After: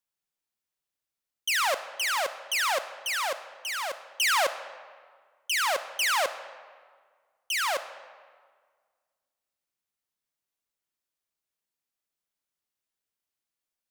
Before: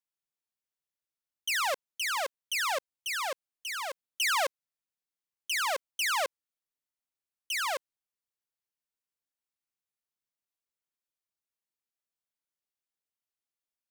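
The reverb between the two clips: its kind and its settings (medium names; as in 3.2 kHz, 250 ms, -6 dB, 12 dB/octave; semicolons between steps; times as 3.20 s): algorithmic reverb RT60 1.7 s, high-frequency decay 0.7×, pre-delay 0 ms, DRR 11.5 dB; trim +3.5 dB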